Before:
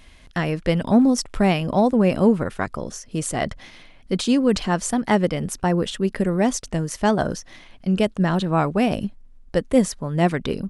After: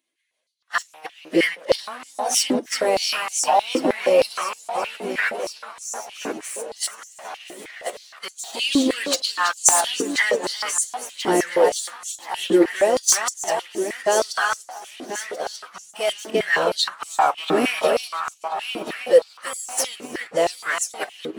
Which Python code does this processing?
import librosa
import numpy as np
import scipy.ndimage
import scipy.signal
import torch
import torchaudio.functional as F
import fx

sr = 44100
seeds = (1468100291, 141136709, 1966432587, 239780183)

p1 = fx.high_shelf(x, sr, hz=2300.0, db=4.5)
p2 = fx.echo_tape(p1, sr, ms=167, feedback_pct=60, wet_db=-3.0, lp_hz=4300.0, drive_db=4.0, wow_cents=33)
p3 = fx.level_steps(p2, sr, step_db=21)
p4 = fx.high_shelf(p3, sr, hz=4600.0, db=11.0)
p5 = fx.notch(p4, sr, hz=5100.0, q=14.0)
p6 = p5 + fx.echo_feedback(p5, sr, ms=517, feedback_pct=46, wet_db=-10.5, dry=0)
p7 = fx.leveller(p6, sr, passes=3)
p8 = fx.stretch_vocoder_free(p7, sr, factor=2.0)
p9 = fx.filter_held_highpass(p8, sr, hz=6.4, low_hz=330.0, high_hz=6900.0)
y = p9 * librosa.db_to_amplitude(-9.5)